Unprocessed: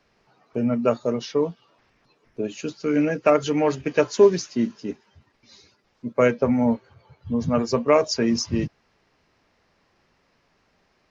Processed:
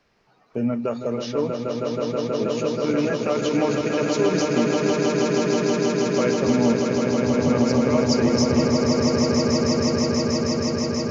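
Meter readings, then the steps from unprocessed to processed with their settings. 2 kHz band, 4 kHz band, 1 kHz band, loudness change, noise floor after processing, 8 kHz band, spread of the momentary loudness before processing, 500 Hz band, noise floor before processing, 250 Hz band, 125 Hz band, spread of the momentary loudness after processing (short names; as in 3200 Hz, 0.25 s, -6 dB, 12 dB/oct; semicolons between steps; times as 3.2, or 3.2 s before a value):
+3.0 dB, +7.0 dB, +1.5 dB, +1.0 dB, -38 dBFS, n/a, 13 LU, +1.5 dB, -67 dBFS, +4.5 dB, +6.0 dB, 6 LU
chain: limiter -15 dBFS, peak gain reduction 10.5 dB; on a send: swelling echo 0.16 s, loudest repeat 8, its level -5 dB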